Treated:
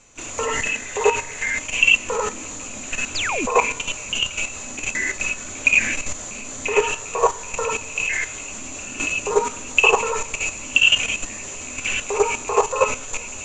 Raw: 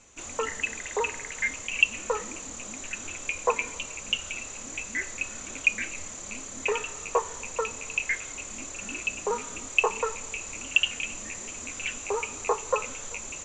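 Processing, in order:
reverb whose tail is shaped and stops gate 120 ms rising, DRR −4.5 dB
sound drawn into the spectrogram fall, 0:03.15–0:03.46, 210–5,400 Hz −28 dBFS
output level in coarse steps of 10 dB
level +7 dB

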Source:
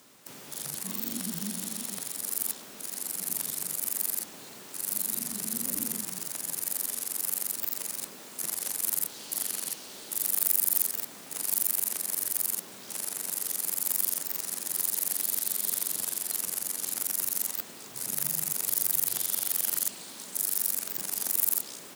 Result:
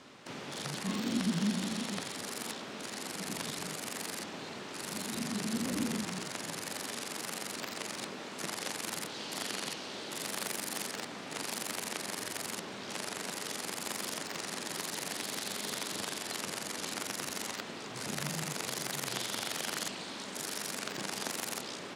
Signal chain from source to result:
low-pass filter 3,900 Hz 12 dB per octave
level +6.5 dB

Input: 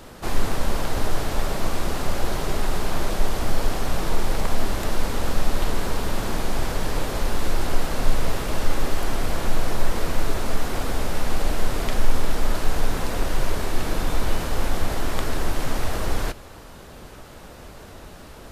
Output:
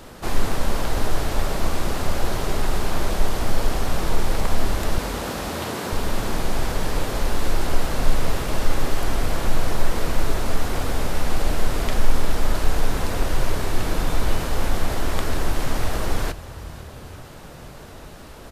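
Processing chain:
0:04.98–0:05.93: high-pass filter 160 Hz 24 dB per octave
on a send: echo with shifted repeats 487 ms, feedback 51%, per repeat +36 Hz, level −19 dB
on the sum: level +1 dB

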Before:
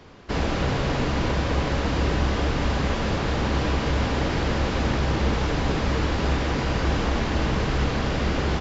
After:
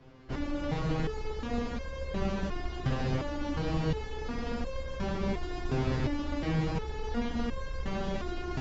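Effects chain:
spectral tilt −2 dB per octave
harmonic generator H 2 −10 dB, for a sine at −4.5 dBFS
delay with a high-pass on its return 144 ms, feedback 76%, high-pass 3,800 Hz, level −4 dB
step-sequenced resonator 2.8 Hz 130–530 Hz
level +2 dB

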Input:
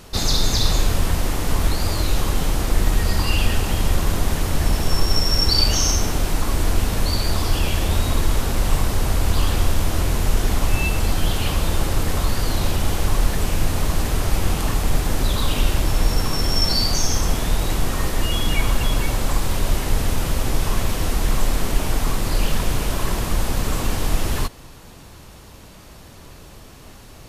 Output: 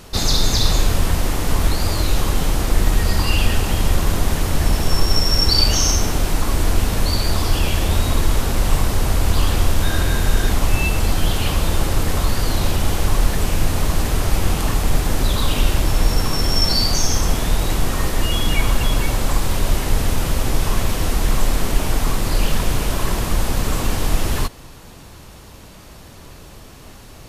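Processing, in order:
0:09.81–0:10.51: hollow resonant body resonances 1,600/3,700 Hz, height 17 dB → 12 dB
level +2 dB

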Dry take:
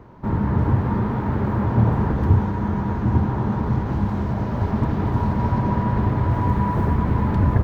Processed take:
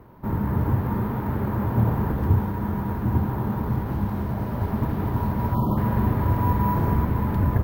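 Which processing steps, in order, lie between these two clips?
0:05.50–0:07.05: double-tracking delay 44 ms −3.5 dB
0:05.54–0:05.78: time-frequency box erased 1,400–2,900 Hz
bad sample-rate conversion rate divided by 3×, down none, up hold
level −3.5 dB

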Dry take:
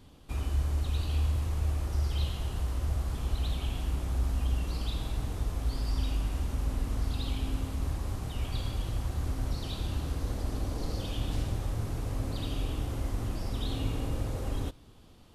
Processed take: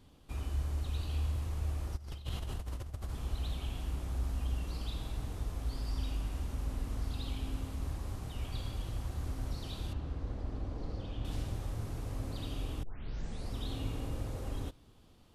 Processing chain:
0:01.96–0:03.09: compressor whose output falls as the input rises −33 dBFS, ratio −0.5
0:09.93–0:11.25: head-to-tape spacing loss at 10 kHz 21 dB
0:12.83: tape start 0.70 s
level −5.5 dB

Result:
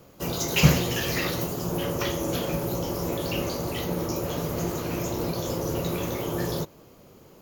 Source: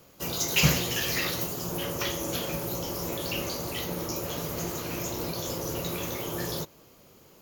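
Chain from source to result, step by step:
tilt shelving filter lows +4 dB, about 1,400 Hz
level +2 dB

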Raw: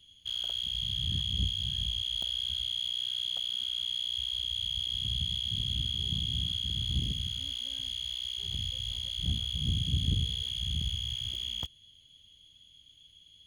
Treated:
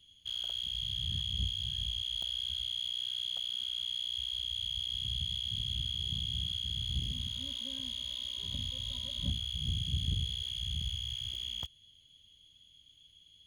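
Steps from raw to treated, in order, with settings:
dynamic equaliser 290 Hz, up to −6 dB, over −51 dBFS, Q 0.73
0:07.12–0:09.29: hollow resonant body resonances 250/570/1,000/3,700 Hz, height 14 dB → 18 dB, ringing for 55 ms
level −3 dB

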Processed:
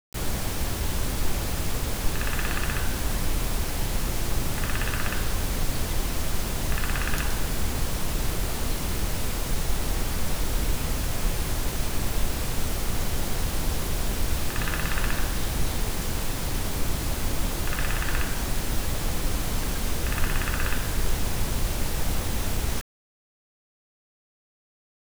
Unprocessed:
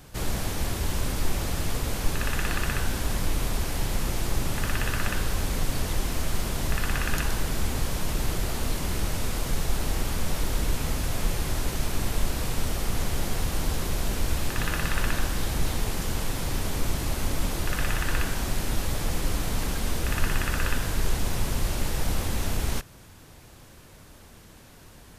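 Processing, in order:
echo ahead of the sound 118 ms −23.5 dB
bit-depth reduction 6 bits, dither none

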